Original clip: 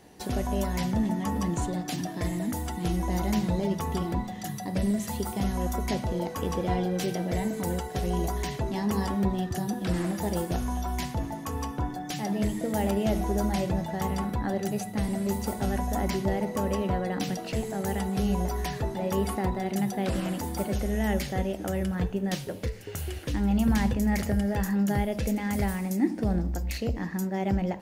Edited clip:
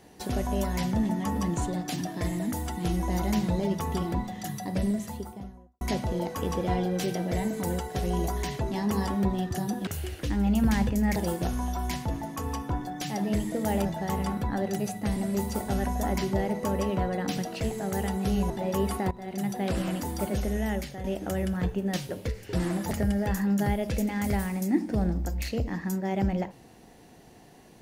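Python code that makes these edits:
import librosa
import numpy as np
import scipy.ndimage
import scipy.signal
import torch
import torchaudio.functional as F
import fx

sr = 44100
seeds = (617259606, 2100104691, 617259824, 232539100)

y = fx.studio_fade_out(x, sr, start_s=4.65, length_s=1.16)
y = fx.edit(y, sr, fx.swap(start_s=9.87, length_s=0.38, other_s=22.91, other_length_s=1.29),
    fx.cut(start_s=12.94, length_s=0.83),
    fx.cut(start_s=18.42, length_s=0.46),
    fx.fade_in_from(start_s=19.49, length_s=0.67, curve='qsin', floor_db=-17.5),
    fx.fade_out_to(start_s=20.87, length_s=0.55, floor_db=-11.0), tone=tone)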